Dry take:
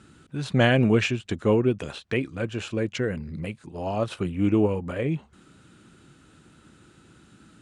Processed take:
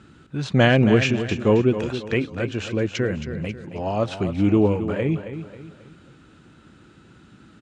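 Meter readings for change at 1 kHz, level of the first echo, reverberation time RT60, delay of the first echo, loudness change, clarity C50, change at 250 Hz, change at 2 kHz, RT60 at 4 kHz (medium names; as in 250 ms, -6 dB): +3.5 dB, -10.5 dB, no reverb, 270 ms, +3.5 dB, no reverb, +4.0 dB, +3.5 dB, no reverb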